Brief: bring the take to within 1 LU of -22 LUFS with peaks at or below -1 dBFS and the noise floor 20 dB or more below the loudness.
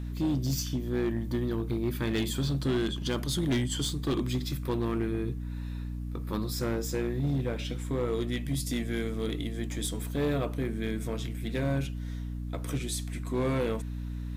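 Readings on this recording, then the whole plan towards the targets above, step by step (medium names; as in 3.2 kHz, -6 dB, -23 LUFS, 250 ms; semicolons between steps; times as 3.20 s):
clipped samples 2.3%; clipping level -23.0 dBFS; hum 60 Hz; highest harmonic 300 Hz; hum level -33 dBFS; loudness -31.5 LUFS; peak level -23.0 dBFS; loudness target -22.0 LUFS
-> clip repair -23 dBFS; de-hum 60 Hz, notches 5; trim +9.5 dB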